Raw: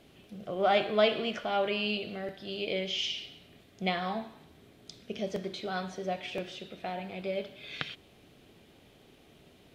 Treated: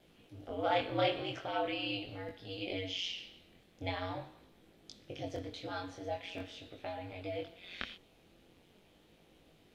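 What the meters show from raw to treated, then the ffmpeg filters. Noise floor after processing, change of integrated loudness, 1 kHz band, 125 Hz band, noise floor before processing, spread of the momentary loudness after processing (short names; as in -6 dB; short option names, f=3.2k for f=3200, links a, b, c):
-65 dBFS, -6.0 dB, -5.0 dB, -2.0 dB, -59 dBFS, 18 LU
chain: -af "aeval=exprs='val(0)*sin(2*PI*90*n/s)':c=same,flanger=delay=18.5:depth=5.9:speed=0.43"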